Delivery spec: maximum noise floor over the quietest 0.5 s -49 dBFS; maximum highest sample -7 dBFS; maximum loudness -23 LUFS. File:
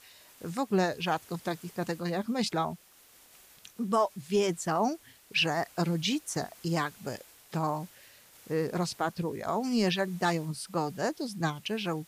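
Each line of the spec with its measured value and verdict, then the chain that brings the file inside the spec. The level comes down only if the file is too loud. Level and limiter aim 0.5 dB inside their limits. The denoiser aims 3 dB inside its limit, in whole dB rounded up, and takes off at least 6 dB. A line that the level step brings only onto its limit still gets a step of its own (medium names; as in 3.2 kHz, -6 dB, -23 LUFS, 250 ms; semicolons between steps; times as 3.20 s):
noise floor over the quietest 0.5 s -59 dBFS: pass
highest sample -16.5 dBFS: pass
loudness -31.5 LUFS: pass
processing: none needed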